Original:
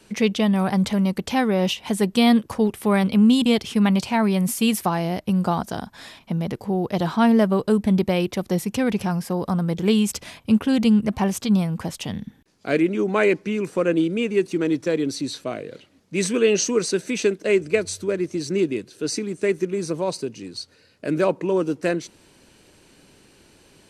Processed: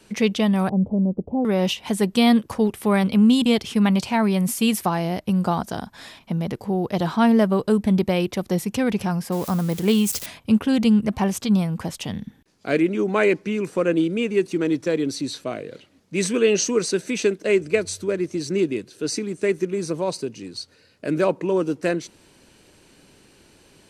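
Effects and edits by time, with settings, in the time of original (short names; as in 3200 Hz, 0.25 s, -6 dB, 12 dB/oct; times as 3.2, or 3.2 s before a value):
0.69–1.45 inverse Chebyshev low-pass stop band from 1700 Hz, stop band 50 dB
9.32–10.26 switching spikes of -24 dBFS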